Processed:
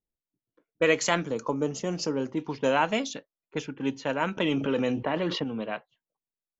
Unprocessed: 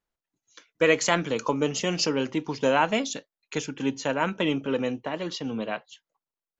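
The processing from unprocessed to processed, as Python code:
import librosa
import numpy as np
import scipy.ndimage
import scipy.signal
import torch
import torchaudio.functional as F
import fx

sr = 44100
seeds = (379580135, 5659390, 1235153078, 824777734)

y = fx.env_lowpass(x, sr, base_hz=420.0, full_db=-21.5)
y = fx.peak_eq(y, sr, hz=2800.0, db=-12.5, octaves=1.6, at=(1.23, 2.37), fade=0.02)
y = fx.env_flatten(y, sr, amount_pct=70, at=(4.37, 5.44))
y = y * 10.0 ** (-2.0 / 20.0)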